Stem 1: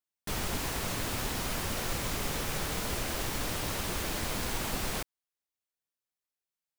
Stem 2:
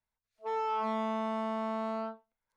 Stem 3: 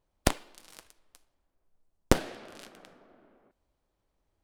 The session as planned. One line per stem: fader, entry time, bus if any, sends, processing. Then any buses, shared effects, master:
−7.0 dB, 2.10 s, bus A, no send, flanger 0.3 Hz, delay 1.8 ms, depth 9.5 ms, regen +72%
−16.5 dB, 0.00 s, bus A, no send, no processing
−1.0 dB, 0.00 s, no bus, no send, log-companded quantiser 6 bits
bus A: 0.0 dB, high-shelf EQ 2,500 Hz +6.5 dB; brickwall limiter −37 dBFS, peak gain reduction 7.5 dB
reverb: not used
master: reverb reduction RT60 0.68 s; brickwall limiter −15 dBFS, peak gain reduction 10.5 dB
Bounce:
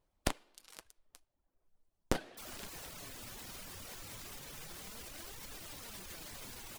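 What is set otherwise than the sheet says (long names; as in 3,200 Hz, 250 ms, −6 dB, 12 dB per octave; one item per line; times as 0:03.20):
stem 2: muted
stem 3: missing log-companded quantiser 6 bits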